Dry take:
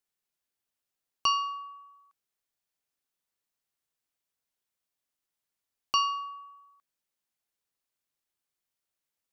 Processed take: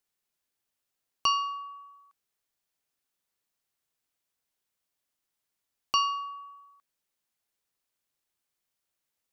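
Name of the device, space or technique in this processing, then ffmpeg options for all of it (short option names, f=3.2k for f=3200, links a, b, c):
parallel compression: -filter_complex "[0:a]asplit=2[a][b];[b]acompressor=threshold=-44dB:ratio=6,volume=-8dB[c];[a][c]amix=inputs=2:normalize=0"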